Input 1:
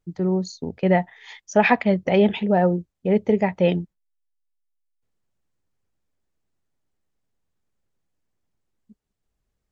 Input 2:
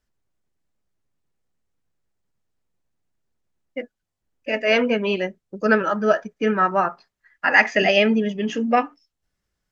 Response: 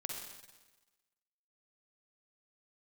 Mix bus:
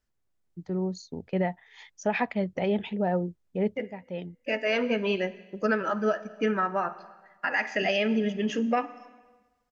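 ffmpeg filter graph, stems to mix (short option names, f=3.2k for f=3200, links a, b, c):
-filter_complex "[0:a]adelay=500,volume=-7.5dB[a];[1:a]volume=-5dB,asplit=3[b][c][d];[c]volume=-12dB[e];[d]apad=whole_len=450398[f];[a][f]sidechaincompress=threshold=-45dB:ratio=5:attack=48:release=1220[g];[2:a]atrim=start_sample=2205[h];[e][h]afir=irnorm=-1:irlink=0[i];[g][b][i]amix=inputs=3:normalize=0,alimiter=limit=-16dB:level=0:latency=1:release=304"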